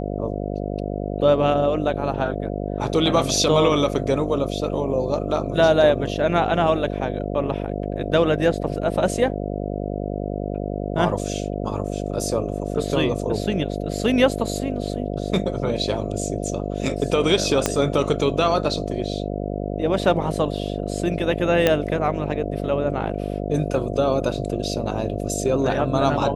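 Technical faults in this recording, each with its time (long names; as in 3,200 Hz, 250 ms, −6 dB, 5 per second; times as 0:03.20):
mains buzz 50 Hz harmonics 14 −27 dBFS
0:17.66: click −4 dBFS
0:21.67: click −4 dBFS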